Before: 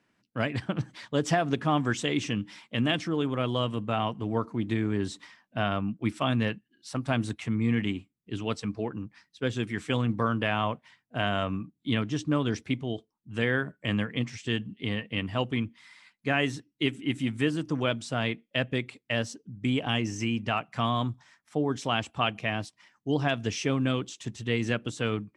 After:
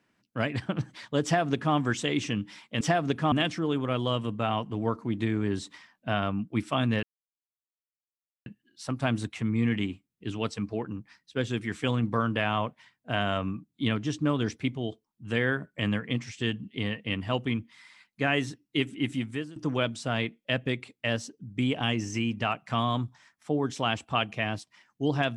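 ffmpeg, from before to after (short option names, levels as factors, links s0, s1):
-filter_complex "[0:a]asplit=5[s0][s1][s2][s3][s4];[s0]atrim=end=2.812[s5];[s1]atrim=start=1.238:end=1.752[s6];[s2]atrim=start=2.808:end=6.52,asetpts=PTS-STARTPTS,afade=t=out:st=3.708:d=0.004:c=hsin,apad=pad_dur=1.43[s7];[s3]atrim=start=6.52:end=17.62,asetpts=PTS-STARTPTS,afade=t=in:d=0.004:c=hsin,afade=t=out:st=10.65:d=0.45:silence=0.0944061[s8];[s4]atrim=start=17.62,asetpts=PTS-STARTPTS,afade=t=in:d=0.004:c=hsin:silence=0.0944061[s9];[s5][s6]acrossfade=d=0.004:c1=hsin:c2=hsin[s10];[s7][s8][s9]concat=n=3:v=0:a=1[s11];[s10][s11]acrossfade=d=0.004:c1=hsin:c2=hsin"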